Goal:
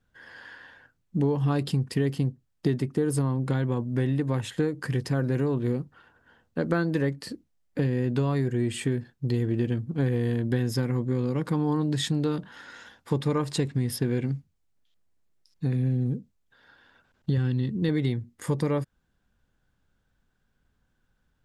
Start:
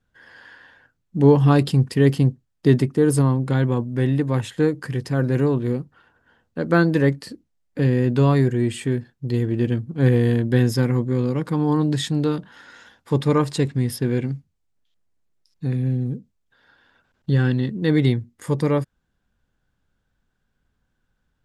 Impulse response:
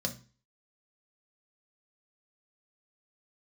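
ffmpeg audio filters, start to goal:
-filter_complex "[0:a]asettb=1/sr,asplit=3[link_01][link_02][link_03];[link_01]atrim=end=17.374[link_04];[link_02]atrim=start=17.37:end=17.89,asetpts=PTS-STARTPTS,afade=type=in:duration=0.004:curve=qsin,afade=type=out:start_time=0.516:duration=0.004:curve=qsin,equalizer=frequency=100:width_type=o:width=0.67:gain=7,equalizer=frequency=630:width_type=o:width=0.67:gain=-6,equalizer=frequency=1600:width_type=o:width=0.67:gain=-5[link_05];[link_03]atrim=start=17.886[link_06];[link_04][link_05]acrossfade=duration=0.004:curve1=hsin:curve2=qsin[link_07];[link_07][link_06]acrossfade=duration=0.004:curve1=qsin:curve2=hsin,acompressor=threshold=-22dB:ratio=6"

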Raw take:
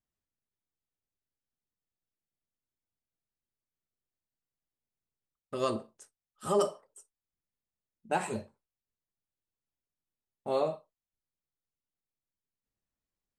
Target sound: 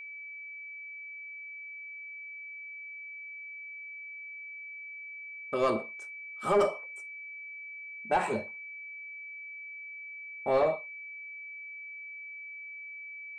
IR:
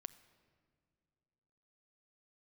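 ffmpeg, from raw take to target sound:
-filter_complex "[0:a]asplit=2[link_01][link_02];[link_02]highpass=frequency=720:poles=1,volume=17dB,asoftclip=type=tanh:threshold=-14.5dB[link_03];[link_01][link_03]amix=inputs=2:normalize=0,lowpass=frequency=1200:poles=1,volume=-6dB,aeval=exprs='val(0)+0.00891*sin(2*PI*2300*n/s)':channel_layout=same"

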